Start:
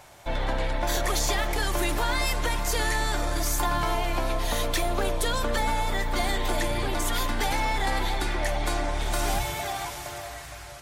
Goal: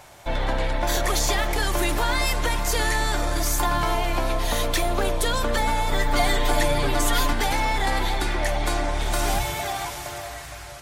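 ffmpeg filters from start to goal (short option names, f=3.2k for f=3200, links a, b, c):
-filter_complex "[0:a]asettb=1/sr,asplit=3[a][b][c];[a]atrim=end=5.914[d];[b]atrim=start=5.91:end=7.33,asetpts=PTS-STARTPTS,afade=t=in:d=0.004:c=qsin,afade=t=out:st=1.416:d=0.004:c=qsin,aecho=1:1:7:0.77,atrim=end_sample=62622[e];[c]atrim=start=7.326[f];[d][e]acrossfade=d=0.004:c1=hsin:c2=qsin[g];[g][f]acrossfade=d=0.004:c1=qsin:c2=hsin,volume=3dB"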